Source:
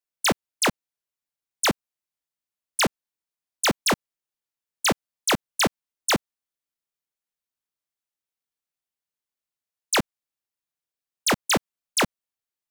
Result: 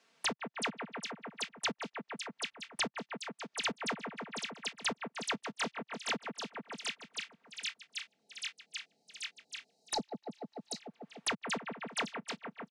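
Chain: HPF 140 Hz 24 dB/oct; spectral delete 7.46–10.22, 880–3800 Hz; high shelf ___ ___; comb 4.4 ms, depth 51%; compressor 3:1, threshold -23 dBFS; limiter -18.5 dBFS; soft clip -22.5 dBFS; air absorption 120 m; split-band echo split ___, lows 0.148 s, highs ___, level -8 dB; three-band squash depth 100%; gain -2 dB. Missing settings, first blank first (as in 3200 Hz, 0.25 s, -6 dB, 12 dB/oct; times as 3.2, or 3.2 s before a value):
11000 Hz, -6 dB, 2500 Hz, 0.786 s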